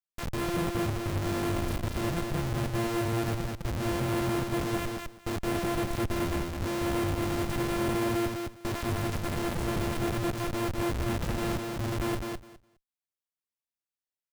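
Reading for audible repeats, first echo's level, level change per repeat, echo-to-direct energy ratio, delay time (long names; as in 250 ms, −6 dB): 2, −3.5 dB, −16.0 dB, −3.5 dB, 206 ms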